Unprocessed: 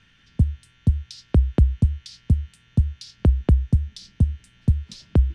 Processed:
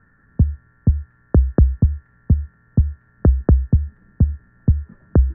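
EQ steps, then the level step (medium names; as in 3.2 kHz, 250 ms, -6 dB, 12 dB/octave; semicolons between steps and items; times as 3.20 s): rippled Chebyshev low-pass 1.8 kHz, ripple 3 dB; +6.0 dB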